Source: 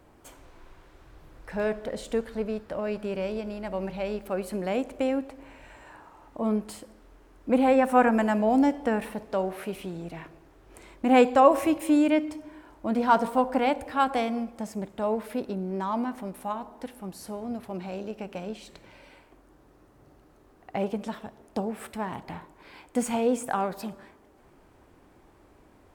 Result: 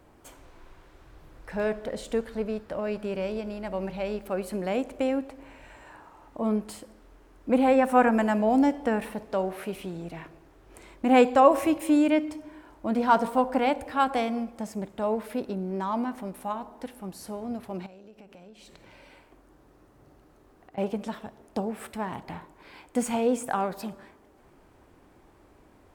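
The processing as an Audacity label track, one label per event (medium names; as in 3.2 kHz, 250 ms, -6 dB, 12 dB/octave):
17.860000	20.780000	compression, threshold -47 dBFS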